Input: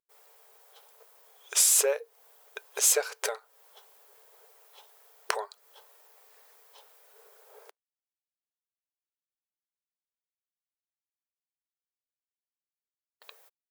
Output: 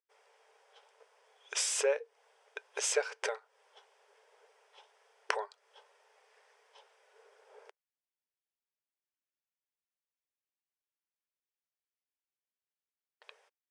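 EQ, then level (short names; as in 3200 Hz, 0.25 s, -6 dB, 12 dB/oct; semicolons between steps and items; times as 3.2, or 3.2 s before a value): air absorption 58 m; speaker cabinet 370–8400 Hz, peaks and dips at 690 Hz -4 dB, 1200 Hz -5 dB, 4100 Hz -9 dB, 7000 Hz -7 dB; 0.0 dB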